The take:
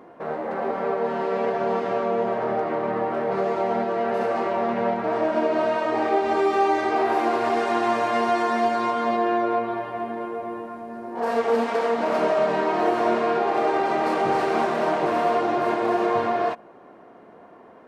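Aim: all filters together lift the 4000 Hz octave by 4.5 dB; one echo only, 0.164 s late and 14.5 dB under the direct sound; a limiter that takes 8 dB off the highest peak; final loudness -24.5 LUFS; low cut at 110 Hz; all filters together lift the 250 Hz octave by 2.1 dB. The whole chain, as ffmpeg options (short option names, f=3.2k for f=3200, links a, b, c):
-af "highpass=110,equalizer=f=250:t=o:g=3,equalizer=f=4k:t=o:g=6,alimiter=limit=-16.5dB:level=0:latency=1,aecho=1:1:164:0.188,volume=1dB"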